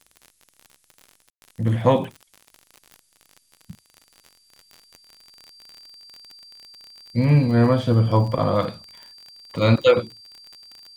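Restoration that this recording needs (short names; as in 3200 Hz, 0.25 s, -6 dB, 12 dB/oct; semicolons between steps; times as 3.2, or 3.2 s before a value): de-click; notch 4700 Hz, Q 30; room tone fill 1.3–1.42; expander -55 dBFS, range -21 dB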